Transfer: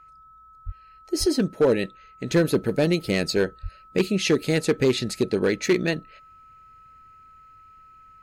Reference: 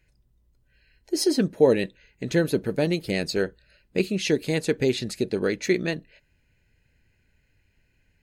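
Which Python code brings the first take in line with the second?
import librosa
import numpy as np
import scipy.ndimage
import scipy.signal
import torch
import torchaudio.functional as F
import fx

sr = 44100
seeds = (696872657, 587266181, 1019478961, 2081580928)

y = fx.fix_declip(x, sr, threshold_db=-13.0)
y = fx.notch(y, sr, hz=1300.0, q=30.0)
y = fx.highpass(y, sr, hz=140.0, slope=24, at=(0.65, 0.77), fade=0.02)
y = fx.highpass(y, sr, hz=140.0, slope=24, at=(1.19, 1.31), fade=0.02)
y = fx.highpass(y, sr, hz=140.0, slope=24, at=(3.62, 3.74), fade=0.02)
y = fx.fix_level(y, sr, at_s=2.31, step_db=-3.0)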